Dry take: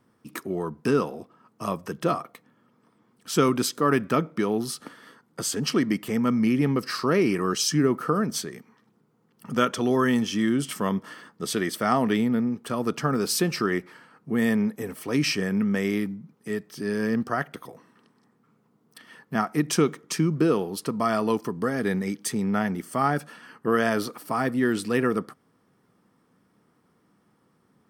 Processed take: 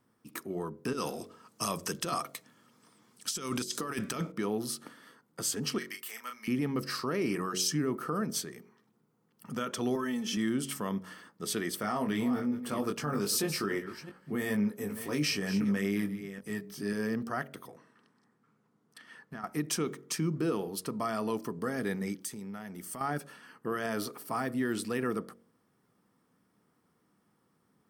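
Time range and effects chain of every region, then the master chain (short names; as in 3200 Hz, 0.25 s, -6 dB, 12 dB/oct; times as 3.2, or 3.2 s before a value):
0.93–4.32 bell 6600 Hz +14 dB 2.5 oct + negative-ratio compressor -24 dBFS, ratio -0.5
5.78–6.48 HPF 1400 Hz + high shelf 10000 Hz +5.5 dB + doubler 32 ms -6 dB
9.95–10.37 comb 4.6 ms, depth 94% + compressor, threshold -23 dBFS
11.8–16.93 reverse delay 0.328 s, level -13 dB + doubler 20 ms -5 dB
17.68–19.44 LPF 9300 Hz + bell 1600 Hz +4.5 dB 0.68 oct + compressor 10:1, threshold -31 dBFS
22.21–23.01 high shelf 4100 Hz +6 dB + compressor 4:1, threshold -33 dBFS
whole clip: limiter -15 dBFS; high shelf 7400 Hz +6.5 dB; de-hum 46.18 Hz, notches 14; gain -6.5 dB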